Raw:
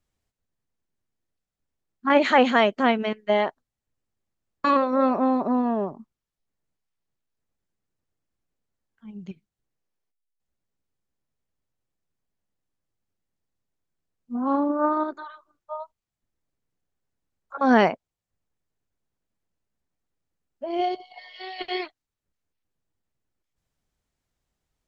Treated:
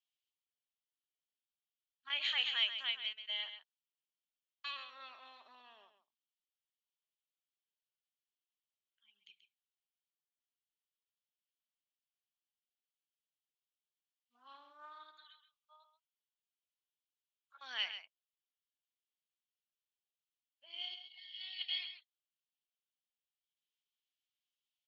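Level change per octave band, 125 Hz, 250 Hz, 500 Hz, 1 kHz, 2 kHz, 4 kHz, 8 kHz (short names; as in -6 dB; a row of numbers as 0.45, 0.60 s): under -40 dB, under -40 dB, under -40 dB, -30.5 dB, -14.5 dB, -0.5 dB, n/a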